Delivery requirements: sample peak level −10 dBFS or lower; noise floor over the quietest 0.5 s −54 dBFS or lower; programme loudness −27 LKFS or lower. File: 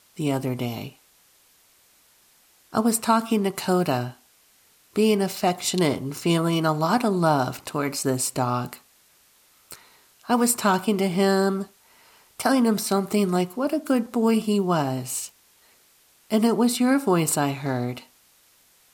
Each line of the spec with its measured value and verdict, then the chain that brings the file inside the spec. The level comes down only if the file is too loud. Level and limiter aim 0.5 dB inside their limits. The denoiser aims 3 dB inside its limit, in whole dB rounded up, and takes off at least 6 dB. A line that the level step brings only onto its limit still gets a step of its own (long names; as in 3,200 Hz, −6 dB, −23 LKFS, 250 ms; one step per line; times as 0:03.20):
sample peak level −6.5 dBFS: out of spec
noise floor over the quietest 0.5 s −59 dBFS: in spec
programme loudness −23.5 LKFS: out of spec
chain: level −4 dB